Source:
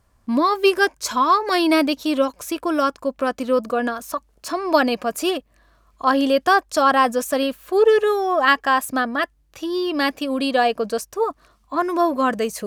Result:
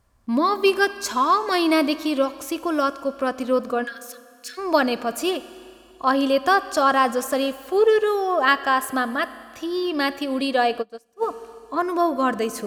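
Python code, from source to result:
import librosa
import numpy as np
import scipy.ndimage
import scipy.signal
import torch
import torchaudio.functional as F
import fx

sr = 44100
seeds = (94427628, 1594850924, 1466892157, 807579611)

y = fx.ellip_highpass(x, sr, hz=1600.0, order=4, stop_db=40, at=(3.83, 4.57), fade=0.02)
y = fx.rev_schroeder(y, sr, rt60_s=2.4, comb_ms=27, drr_db=14.5)
y = fx.upward_expand(y, sr, threshold_db=-30.0, expansion=2.5, at=(10.81, 11.21), fade=0.02)
y = y * 10.0 ** (-2.0 / 20.0)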